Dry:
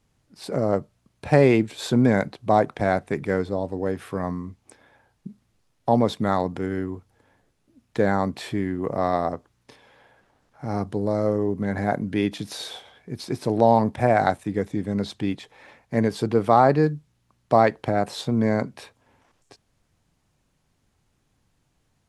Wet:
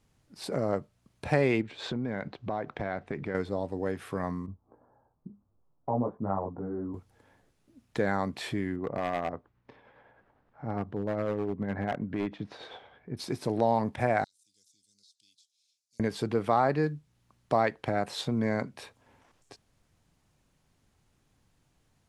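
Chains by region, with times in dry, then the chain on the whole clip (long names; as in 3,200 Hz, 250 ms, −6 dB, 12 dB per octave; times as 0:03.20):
0:01.61–0:03.35: downward compressor 4 to 1, threshold −25 dBFS + low-pass filter 3,600 Hz
0:04.46–0:06.94: Butterworth low-pass 1,200 Hz + micro pitch shift up and down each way 18 cents
0:08.76–0:13.17: low-pass filter 2,000 Hz + amplitude tremolo 9.8 Hz, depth 38% + hard clipping −19 dBFS
0:14.24–0:16.00: inverse Chebyshev high-pass filter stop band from 2,000 Hz, stop band 50 dB + high-frequency loss of the air 55 metres + downward compressor 4 to 1, threshold −59 dBFS
whole clip: dynamic equaliser 2,200 Hz, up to +5 dB, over −38 dBFS, Q 0.71; downward compressor 1.5 to 1, threshold −35 dBFS; level −1 dB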